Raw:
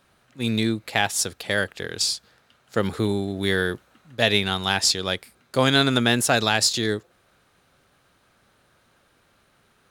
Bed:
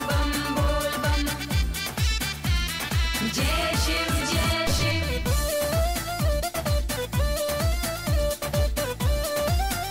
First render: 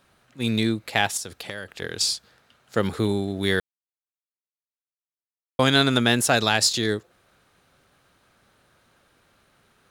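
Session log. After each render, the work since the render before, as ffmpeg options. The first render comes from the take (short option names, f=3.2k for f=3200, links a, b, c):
-filter_complex "[0:a]asettb=1/sr,asplit=3[a][b][c];[a]atrim=end=1.174[d];[b]atrim=start=1.17:end=1.82,asetpts=PTS-STARTPTS,afade=t=in:d=0.004:c=qsin,afade=t=out:st=0.646:d=0.004:c=qsin,acompressor=threshold=-29dB:ratio=8:attack=3.2:release=140:knee=1:detection=peak[e];[c]atrim=start=1.816[f];[d][e]acrossfade=d=0.004:c1=hsin:c2=qsin[g];[g][f]acrossfade=d=0.004:c1=qsin:c2=hsin,asplit=3[h][i][j];[h]atrim=end=3.6,asetpts=PTS-STARTPTS,afade=t=out:st=3.596:d=0.004:c=hsin[k];[i]atrim=start=3.6:end=5.59,asetpts=PTS-STARTPTS,volume=0[l];[j]atrim=start=5.59,asetpts=PTS-STARTPTS,afade=t=in:d=0.004:c=hsin[m];[k][l][m]concat=n=3:v=0:a=1"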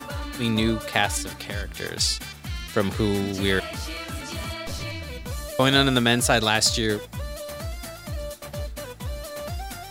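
-filter_complex "[1:a]volume=-8.5dB[a];[0:a][a]amix=inputs=2:normalize=0"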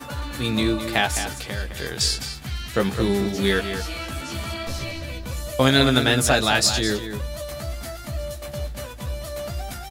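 -filter_complex "[0:a]asplit=2[a][b];[b]adelay=15,volume=-5.5dB[c];[a][c]amix=inputs=2:normalize=0,asplit=2[d][e];[e]adelay=209.9,volume=-9dB,highshelf=f=4k:g=-4.72[f];[d][f]amix=inputs=2:normalize=0"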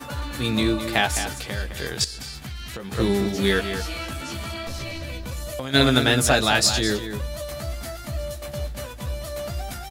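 -filter_complex "[0:a]asettb=1/sr,asplit=3[a][b][c];[a]atrim=end=2.044[d];[b]atrim=start=2.04:end=2.92,asetpts=PTS-STARTPTS,afade=t=in:d=0.004:c=qsin,afade=t=out:st=0.876:d=0.004:c=qsin,acompressor=threshold=-30dB:ratio=16:attack=3.2:release=140:knee=1:detection=peak[e];[c]atrim=start=2.916[f];[d][e]acrossfade=d=0.004:c1=hsin:c2=qsin[g];[g][f]acrossfade=d=0.004:c1=qsin:c2=hsin,asplit=3[h][i][j];[h]afade=t=out:st=4.12:d=0.02[k];[i]acompressor=threshold=-27dB:ratio=6:attack=3.2:release=140:knee=1:detection=peak,afade=t=in:st=4.12:d=0.02,afade=t=out:st=5.73:d=0.02[l];[j]afade=t=in:st=5.73:d=0.02[m];[k][l][m]amix=inputs=3:normalize=0"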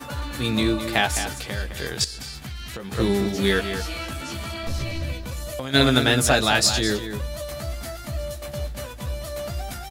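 -filter_complex "[0:a]asettb=1/sr,asplit=3[a][b][c];[a]atrim=end=4.634[d];[b]atrim=start=4.63:end=5.13,asetpts=PTS-STARTPTS,afade=t=in:d=0.004:c=qsin,afade=t=out:st=0.496:d=0.004:c=qsin,lowshelf=f=220:g=7.5[e];[c]atrim=start=5.126[f];[d][e]acrossfade=d=0.004:c1=hsin:c2=qsin[g];[g][f]acrossfade=d=0.004:c1=qsin:c2=hsin"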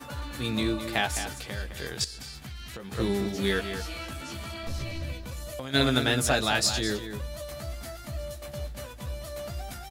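-af "volume=-6dB"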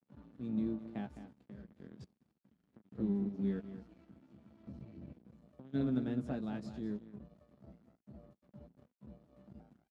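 -af "aeval=exprs='sgn(val(0))*max(abs(val(0))-0.0158,0)':c=same,bandpass=f=210:t=q:w=2.5:csg=0"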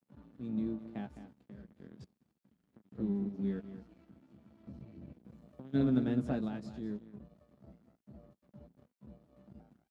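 -filter_complex "[0:a]asplit=3[a][b][c];[a]atrim=end=5.242[d];[b]atrim=start=5.238:end=6.482,asetpts=PTS-STARTPTS,volume=4.5dB[e];[c]atrim=start=6.478[f];[d][e]acrossfade=d=0.004:c1=hsin:c2=hsin[g];[g][f]acrossfade=d=0.004:c1=hsin:c2=hsin"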